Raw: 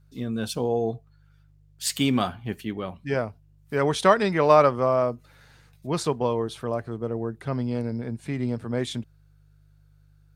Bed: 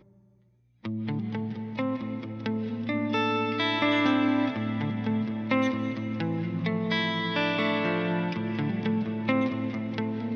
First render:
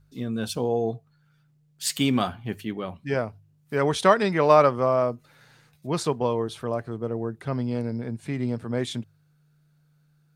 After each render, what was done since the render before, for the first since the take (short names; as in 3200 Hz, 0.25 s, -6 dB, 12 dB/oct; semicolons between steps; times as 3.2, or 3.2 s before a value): de-hum 50 Hz, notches 2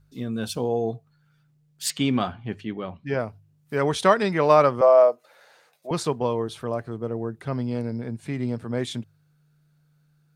1.9–3.2 air absorption 100 m; 4.81–5.91 resonant high-pass 580 Hz, resonance Q 2.8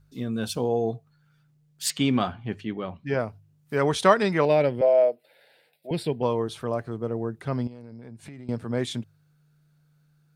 4.45–6.23 fixed phaser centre 2800 Hz, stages 4; 7.67–8.49 compressor 10:1, threshold -38 dBFS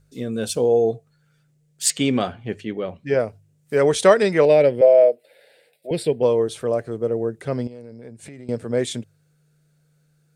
graphic EQ 500/1000/2000/8000 Hz +10/-5/+4/+10 dB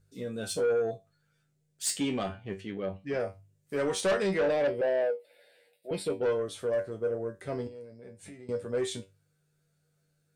resonator 96 Hz, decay 0.22 s, harmonics all, mix 90%; soft clip -22.5 dBFS, distortion -8 dB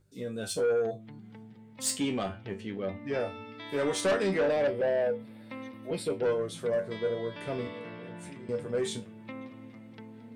add bed -17 dB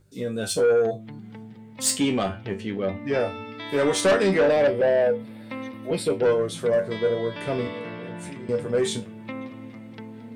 gain +7.5 dB